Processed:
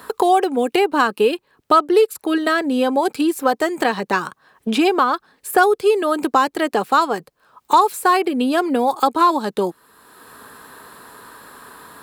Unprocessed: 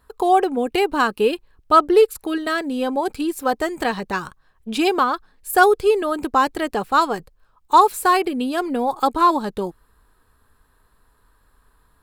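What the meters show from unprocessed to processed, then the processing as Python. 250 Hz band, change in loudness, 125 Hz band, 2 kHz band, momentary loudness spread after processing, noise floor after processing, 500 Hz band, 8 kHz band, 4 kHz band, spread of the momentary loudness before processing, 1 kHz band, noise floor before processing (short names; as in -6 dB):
+3.0 dB, +1.5 dB, n/a, +1.5 dB, 7 LU, -64 dBFS, +1.5 dB, +1.5 dB, +2.0 dB, 12 LU, +1.0 dB, -61 dBFS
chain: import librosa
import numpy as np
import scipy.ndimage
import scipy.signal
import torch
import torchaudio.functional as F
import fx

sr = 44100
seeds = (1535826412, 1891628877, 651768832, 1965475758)

y = scipy.signal.sosfilt(scipy.signal.butter(2, 200.0, 'highpass', fs=sr, output='sos'), x)
y = fx.band_squash(y, sr, depth_pct=70)
y = y * 10.0 ** (2.0 / 20.0)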